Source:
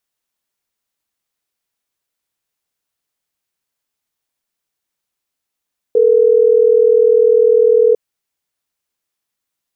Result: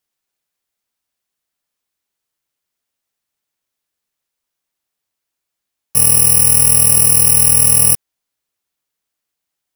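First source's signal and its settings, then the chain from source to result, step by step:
call progress tone ringback tone, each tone -10 dBFS
FFT order left unsorted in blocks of 128 samples

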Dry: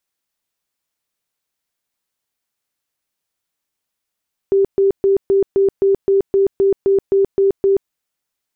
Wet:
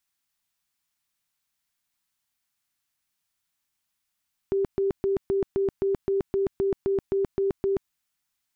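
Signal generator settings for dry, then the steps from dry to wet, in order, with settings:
tone bursts 392 Hz, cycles 50, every 0.26 s, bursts 13, -10 dBFS
bell 460 Hz -14.5 dB 0.88 oct

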